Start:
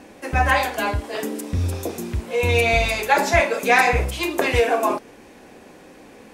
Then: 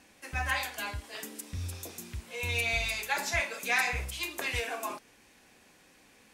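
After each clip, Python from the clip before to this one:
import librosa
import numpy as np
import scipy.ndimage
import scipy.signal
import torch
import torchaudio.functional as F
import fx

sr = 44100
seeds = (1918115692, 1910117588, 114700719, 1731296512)

y = fx.tone_stack(x, sr, knobs='5-5-5')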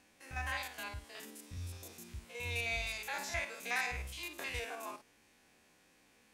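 y = fx.spec_steps(x, sr, hold_ms=50)
y = y * 10.0 ** (-6.0 / 20.0)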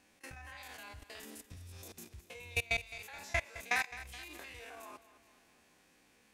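y = fx.level_steps(x, sr, step_db=18)
y = fx.transient(y, sr, attack_db=3, sustain_db=-5)
y = fx.echo_feedback(y, sr, ms=212, feedback_pct=53, wet_db=-15.0)
y = y * 10.0 ** (4.0 / 20.0)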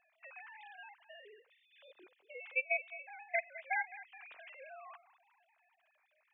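y = fx.sine_speech(x, sr)
y = y * 10.0 ** (-1.5 / 20.0)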